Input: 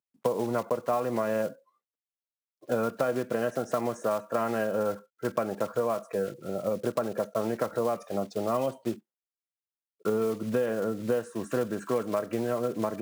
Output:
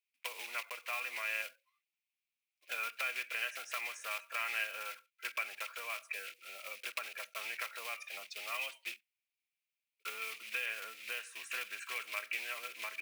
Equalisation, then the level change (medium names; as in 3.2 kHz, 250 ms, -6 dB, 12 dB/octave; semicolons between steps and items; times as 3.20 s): resonant high-pass 2.4 kHz, resonance Q 6.5; peaking EQ 7.1 kHz -3.5 dB 0.6 oct; 0.0 dB